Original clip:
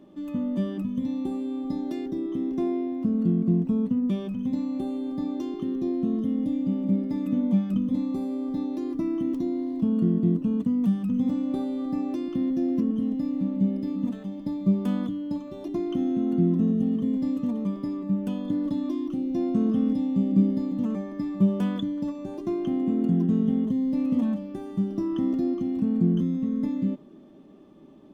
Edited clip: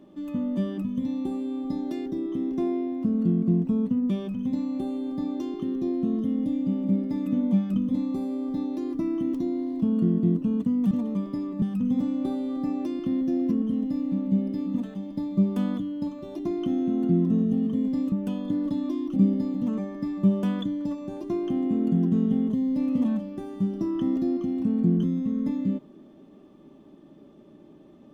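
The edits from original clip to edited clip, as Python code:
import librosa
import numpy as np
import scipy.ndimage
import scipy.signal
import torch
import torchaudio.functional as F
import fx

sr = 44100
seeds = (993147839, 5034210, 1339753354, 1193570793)

y = fx.edit(x, sr, fx.move(start_s=17.41, length_s=0.71, to_s=10.91),
    fx.cut(start_s=19.16, length_s=1.17), tone=tone)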